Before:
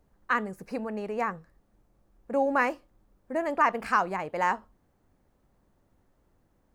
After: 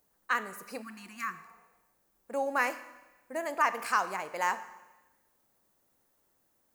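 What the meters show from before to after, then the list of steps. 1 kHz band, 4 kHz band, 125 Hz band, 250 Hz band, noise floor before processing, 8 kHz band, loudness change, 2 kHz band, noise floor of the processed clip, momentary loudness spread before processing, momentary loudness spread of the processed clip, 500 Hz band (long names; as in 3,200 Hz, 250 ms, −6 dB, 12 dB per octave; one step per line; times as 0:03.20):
−4.0 dB, +2.0 dB, below −10 dB, −10.0 dB, −70 dBFS, can't be measured, −3.5 dB, −2.0 dB, −73 dBFS, 11 LU, 16 LU, −6.5 dB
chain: RIAA equalisation recording
four-comb reverb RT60 1.1 s, combs from 28 ms, DRR 12.5 dB
healed spectral selection 0:00.84–0:01.55, 380–1,000 Hz after
level −4 dB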